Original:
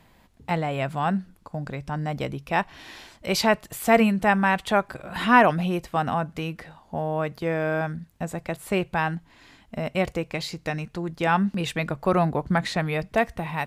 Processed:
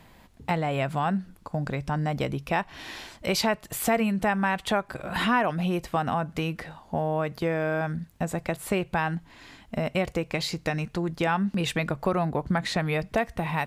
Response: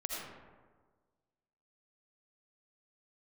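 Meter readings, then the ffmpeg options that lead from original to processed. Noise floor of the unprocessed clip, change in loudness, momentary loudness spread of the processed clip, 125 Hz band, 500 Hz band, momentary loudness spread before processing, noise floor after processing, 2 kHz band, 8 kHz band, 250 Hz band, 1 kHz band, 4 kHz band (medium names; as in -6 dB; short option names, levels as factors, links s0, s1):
-58 dBFS, -3.0 dB, 8 LU, -0.5 dB, -2.5 dB, 14 LU, -55 dBFS, -3.5 dB, +1.0 dB, -2.0 dB, -4.0 dB, 0.0 dB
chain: -af "acompressor=threshold=0.0447:ratio=3,volume=1.5"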